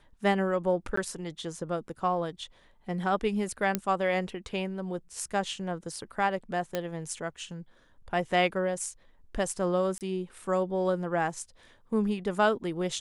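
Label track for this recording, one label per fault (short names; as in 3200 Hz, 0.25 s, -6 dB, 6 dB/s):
0.960000	0.970000	gap 14 ms
3.750000	3.750000	pop -11 dBFS
6.750000	6.750000	pop -15 dBFS
9.980000	10.010000	gap 28 ms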